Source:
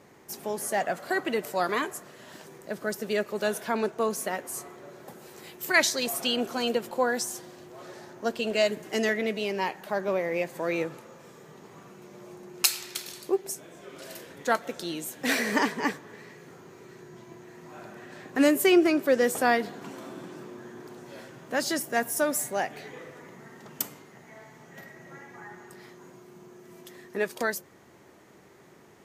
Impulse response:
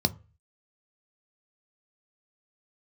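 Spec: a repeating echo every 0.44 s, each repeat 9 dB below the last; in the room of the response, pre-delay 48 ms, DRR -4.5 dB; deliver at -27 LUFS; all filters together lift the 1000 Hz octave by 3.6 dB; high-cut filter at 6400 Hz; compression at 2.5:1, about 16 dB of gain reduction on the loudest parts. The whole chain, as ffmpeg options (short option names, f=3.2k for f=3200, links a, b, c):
-filter_complex "[0:a]lowpass=6.4k,equalizer=f=1k:t=o:g=5,acompressor=threshold=-41dB:ratio=2.5,aecho=1:1:440|880|1320|1760:0.355|0.124|0.0435|0.0152,asplit=2[a][b];[1:a]atrim=start_sample=2205,adelay=48[c];[b][c]afir=irnorm=-1:irlink=0,volume=-4.5dB[d];[a][d]amix=inputs=2:normalize=0,volume=5dB"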